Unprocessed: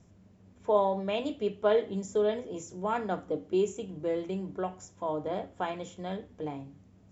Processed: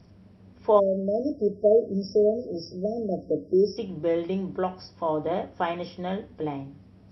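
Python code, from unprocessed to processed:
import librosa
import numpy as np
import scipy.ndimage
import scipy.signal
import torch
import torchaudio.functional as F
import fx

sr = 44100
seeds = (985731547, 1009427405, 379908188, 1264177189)

y = fx.freq_compress(x, sr, knee_hz=3200.0, ratio=1.5)
y = fx.spec_erase(y, sr, start_s=0.79, length_s=2.98, low_hz=690.0, high_hz=4800.0)
y = F.gain(torch.from_numpy(y), 6.0).numpy()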